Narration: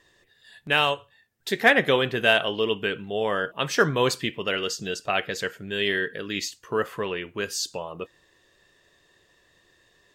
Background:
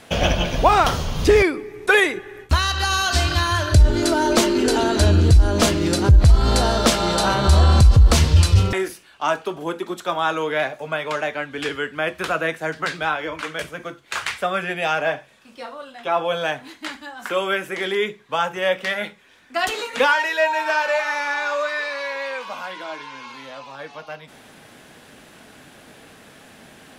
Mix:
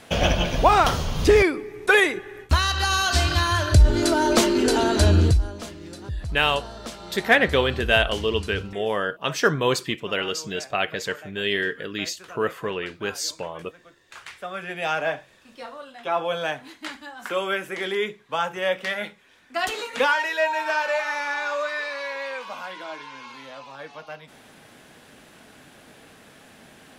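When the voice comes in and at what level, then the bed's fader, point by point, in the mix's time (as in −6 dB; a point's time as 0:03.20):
5.65 s, +0.5 dB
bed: 0:05.24 −1.5 dB
0:05.61 −19.5 dB
0:14.01 −19.5 dB
0:14.89 −3.5 dB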